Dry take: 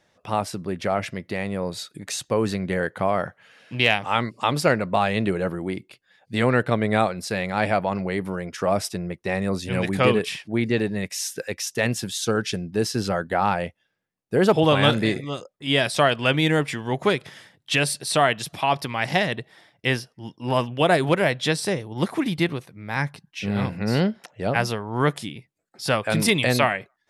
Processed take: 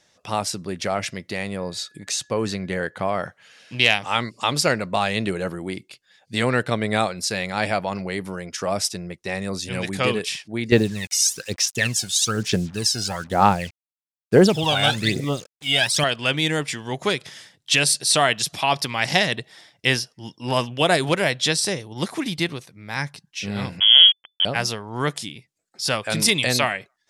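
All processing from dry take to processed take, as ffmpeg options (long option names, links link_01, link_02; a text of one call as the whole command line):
ffmpeg -i in.wav -filter_complex "[0:a]asettb=1/sr,asplit=3[link_01][link_02][link_03];[link_01]atrim=end=1.564[link_04];[link_02]atrim=start=1.56:end=3.23,asetpts=PTS-STARTPTS,afade=type=in:duration=0.004:curve=qsin,afade=type=out:start_time=1.666:duration=0.004:curve=qsin,highshelf=frequency=4900:gain=-7.5,aeval=exprs='val(0)+0.00158*sin(2*PI*1700*n/s)':channel_layout=same[link_05];[link_03]atrim=start=3.226[link_06];[link_04][link_05]acrossfade=duration=0.004:curve1=hsin:curve2=qsin[link_07];[link_07][link_06]acrossfade=duration=0.004:curve1=qsin:curve2=hsin,asettb=1/sr,asplit=3[link_08][link_09][link_10];[link_08]atrim=end=10.724[link_11];[link_09]atrim=start=10.72:end=16.04,asetpts=PTS-STARTPTS,afade=type=in:duration=0.004:curve=qsin,afade=type=out:start_time=5.316:duration=0.004:curve=qsin,aphaser=in_gain=1:out_gain=1:delay=1.4:decay=0.75:speed=1.1:type=sinusoidal,acrusher=bits=6:mix=0:aa=0.5[link_12];[link_10]atrim=start=16.036[link_13];[link_11][link_12]acrossfade=duration=0.004:curve1=hsin:curve2=qsin[link_14];[link_14][link_13]acrossfade=duration=0.004:curve1=qsin:curve2=hsin,asettb=1/sr,asplit=3[link_15][link_16][link_17];[link_15]atrim=end=23.804[link_18];[link_16]atrim=start=23.8:end=24.45,asetpts=PTS-STARTPTS,afade=type=in:duration=0.004:curve=qsin,afade=type=out:start_time=0.646:duration=0.004:curve=qsin,aeval=exprs='val(0)*gte(abs(val(0)),0.0316)':channel_layout=same,equalizer=frequency=340:width=1.2:gain=13,lowpass=frequency=3000:width_type=q:width=0.5098,lowpass=frequency=3000:width_type=q:width=0.6013,lowpass=frequency=3000:width_type=q:width=0.9,lowpass=frequency=3000:width_type=q:width=2.563,afreqshift=-3500[link_19];[link_17]atrim=start=24.446[link_20];[link_18][link_19]acrossfade=duration=0.004:curve1=hsin:curve2=qsin[link_21];[link_21][link_20]acrossfade=duration=0.004:curve1=qsin:curve2=hsin,equalizer=frequency=6300:width=0.57:gain=12,dynaudnorm=framelen=370:gausssize=17:maxgain=11.5dB,volume=-1dB" out.wav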